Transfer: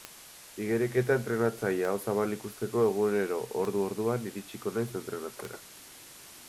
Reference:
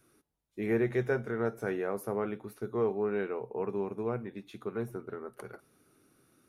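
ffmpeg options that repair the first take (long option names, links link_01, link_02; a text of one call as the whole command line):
ffmpeg -i in.wav -af "adeclick=threshold=4,afwtdn=0.004,asetnsamples=nb_out_samples=441:pad=0,asendcmd='0.97 volume volume -4dB',volume=0dB" out.wav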